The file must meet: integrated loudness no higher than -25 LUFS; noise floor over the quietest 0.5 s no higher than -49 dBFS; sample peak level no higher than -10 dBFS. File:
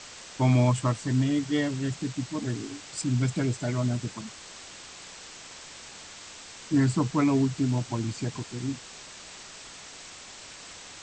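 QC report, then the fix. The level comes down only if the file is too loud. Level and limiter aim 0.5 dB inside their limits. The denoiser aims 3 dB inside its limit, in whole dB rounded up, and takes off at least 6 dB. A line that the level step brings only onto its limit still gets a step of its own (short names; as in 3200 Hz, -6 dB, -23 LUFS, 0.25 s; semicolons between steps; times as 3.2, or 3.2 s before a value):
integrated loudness -27.5 LUFS: OK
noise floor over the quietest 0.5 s -45 dBFS: fail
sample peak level -11.0 dBFS: OK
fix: denoiser 7 dB, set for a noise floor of -45 dBFS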